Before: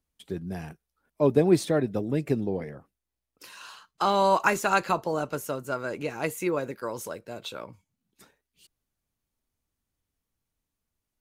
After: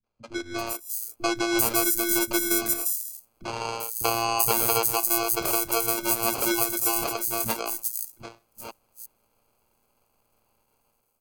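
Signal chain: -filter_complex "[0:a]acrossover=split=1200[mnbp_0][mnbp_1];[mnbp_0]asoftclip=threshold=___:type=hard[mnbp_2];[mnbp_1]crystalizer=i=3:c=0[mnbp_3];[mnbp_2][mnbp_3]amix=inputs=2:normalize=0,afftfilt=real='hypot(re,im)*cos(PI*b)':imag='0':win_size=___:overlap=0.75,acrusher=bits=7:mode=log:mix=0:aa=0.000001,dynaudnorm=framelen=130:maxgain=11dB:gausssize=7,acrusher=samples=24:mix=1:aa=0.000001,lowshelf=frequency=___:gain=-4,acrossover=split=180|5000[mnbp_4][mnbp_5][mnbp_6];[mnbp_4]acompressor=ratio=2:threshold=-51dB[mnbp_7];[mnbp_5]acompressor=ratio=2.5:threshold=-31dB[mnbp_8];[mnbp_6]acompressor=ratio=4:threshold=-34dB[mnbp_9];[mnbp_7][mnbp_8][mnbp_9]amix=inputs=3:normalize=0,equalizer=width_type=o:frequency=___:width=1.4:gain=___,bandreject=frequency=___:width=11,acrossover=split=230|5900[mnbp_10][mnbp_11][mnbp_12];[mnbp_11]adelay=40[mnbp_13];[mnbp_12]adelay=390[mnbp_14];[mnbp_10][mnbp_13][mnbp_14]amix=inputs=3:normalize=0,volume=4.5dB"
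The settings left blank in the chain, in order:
-19dB, 512, 400, 14k, 14.5, 3k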